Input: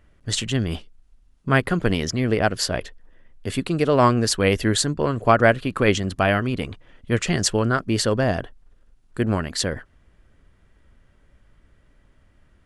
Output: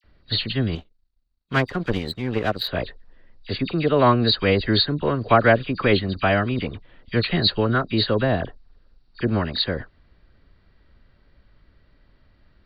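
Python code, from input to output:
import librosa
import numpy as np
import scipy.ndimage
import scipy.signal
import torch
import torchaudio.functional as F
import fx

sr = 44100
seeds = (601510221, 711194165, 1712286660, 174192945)

y = fx.freq_compress(x, sr, knee_hz=3600.0, ratio=4.0)
y = fx.dispersion(y, sr, late='lows', ms=42.0, hz=1800.0)
y = fx.power_curve(y, sr, exponent=1.4, at=(0.75, 2.68))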